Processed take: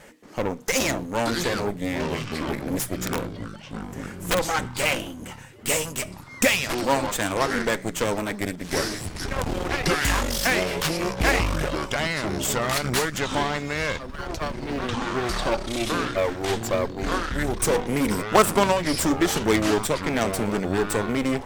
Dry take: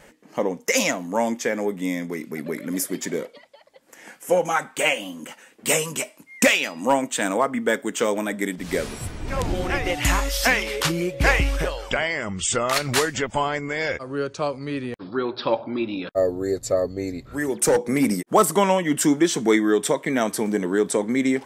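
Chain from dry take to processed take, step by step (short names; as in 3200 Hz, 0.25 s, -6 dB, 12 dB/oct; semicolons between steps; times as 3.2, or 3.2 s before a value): G.711 law mismatch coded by mu; 14.1–14.59 steep high-pass 640 Hz; in parallel at -8 dB: overloaded stage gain 15 dB; on the sum: added harmonics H 3 -10 dB, 5 -22 dB, 8 -22 dB, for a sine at -4.5 dBFS; 2.99–4.4 wrapped overs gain 16 dB; echoes that change speed 0.235 s, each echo -7 st, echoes 2, each echo -6 dB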